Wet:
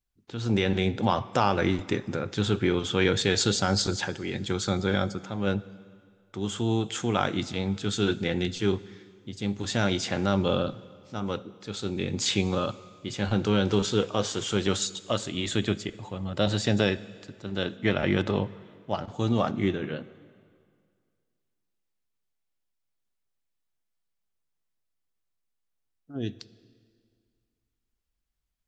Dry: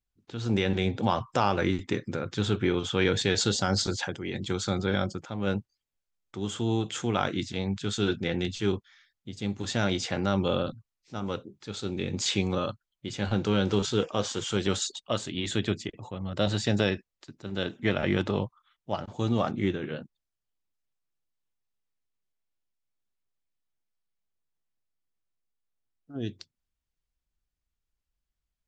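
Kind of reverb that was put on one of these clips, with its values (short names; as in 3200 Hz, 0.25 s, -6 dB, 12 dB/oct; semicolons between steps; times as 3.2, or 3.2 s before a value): plate-style reverb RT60 2.1 s, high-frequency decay 0.9×, pre-delay 0 ms, DRR 17 dB; gain +1.5 dB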